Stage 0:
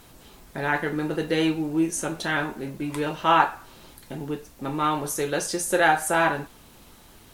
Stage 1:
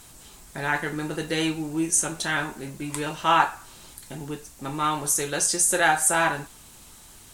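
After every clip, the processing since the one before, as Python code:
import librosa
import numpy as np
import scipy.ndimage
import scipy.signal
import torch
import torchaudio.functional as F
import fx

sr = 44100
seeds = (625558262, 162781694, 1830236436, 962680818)

y = fx.graphic_eq_10(x, sr, hz=(250, 500, 8000), db=(-3, -4, 11))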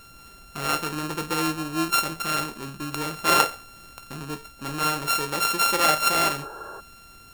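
y = np.r_[np.sort(x[:len(x) // 32 * 32].reshape(-1, 32), axis=1).ravel(), x[len(x) // 32 * 32:]]
y = fx.spec_repair(y, sr, seeds[0], start_s=6.44, length_s=0.33, low_hz=310.0, high_hz=1700.0, source='before')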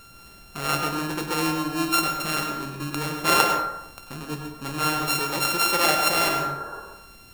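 y = fx.rev_plate(x, sr, seeds[1], rt60_s=0.85, hf_ratio=0.45, predelay_ms=85, drr_db=3.5)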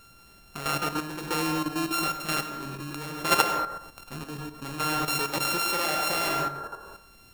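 y = fx.level_steps(x, sr, step_db=9)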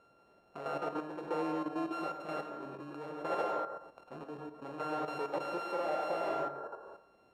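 y = np.clip(10.0 ** (23.5 / 20.0) * x, -1.0, 1.0) / 10.0 ** (23.5 / 20.0)
y = fx.bandpass_q(y, sr, hz=570.0, q=1.7)
y = y * 10.0 ** (1.0 / 20.0)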